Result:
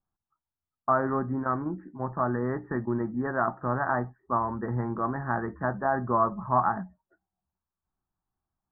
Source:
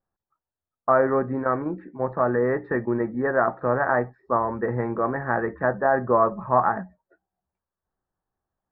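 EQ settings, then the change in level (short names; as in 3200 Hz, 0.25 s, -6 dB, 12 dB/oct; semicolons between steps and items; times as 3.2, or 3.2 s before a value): LPF 1500 Hz 24 dB/oct; air absorption 170 m; bell 500 Hz -13 dB 0.76 oct; 0.0 dB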